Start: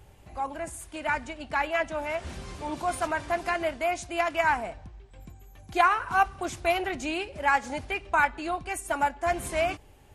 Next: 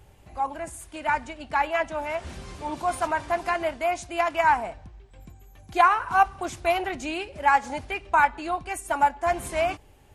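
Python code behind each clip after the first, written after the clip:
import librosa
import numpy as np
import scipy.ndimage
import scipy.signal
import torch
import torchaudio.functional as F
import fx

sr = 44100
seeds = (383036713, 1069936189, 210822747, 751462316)

y = fx.dynamic_eq(x, sr, hz=910.0, q=2.1, threshold_db=-37.0, ratio=4.0, max_db=6)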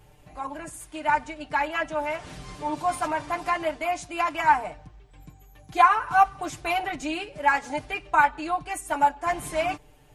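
y = x + 0.82 * np.pad(x, (int(6.7 * sr / 1000.0), 0))[:len(x)]
y = y * 10.0 ** (-2.0 / 20.0)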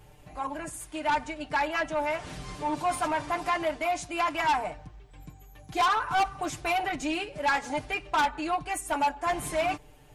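y = 10.0 ** (-21.5 / 20.0) * np.tanh(x / 10.0 ** (-21.5 / 20.0))
y = y * 10.0 ** (1.0 / 20.0)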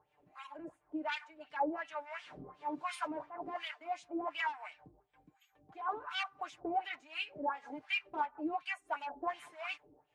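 y = fx.harmonic_tremolo(x, sr, hz=1.2, depth_pct=100, crossover_hz=1000.0)
y = fx.filter_lfo_bandpass(y, sr, shape='sine', hz=2.8, low_hz=280.0, high_hz=3200.0, q=2.3)
y = y * 10.0 ** (2.0 / 20.0)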